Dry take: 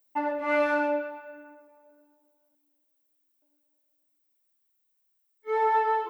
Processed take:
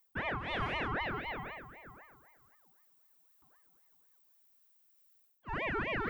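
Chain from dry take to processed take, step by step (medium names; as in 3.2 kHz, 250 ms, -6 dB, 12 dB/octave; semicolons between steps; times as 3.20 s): reverse; compression 5:1, threshold -41 dBFS, peak gain reduction 18.5 dB; reverse; ring modulator with a swept carrier 1 kHz, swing 55%, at 3.9 Hz; trim +8.5 dB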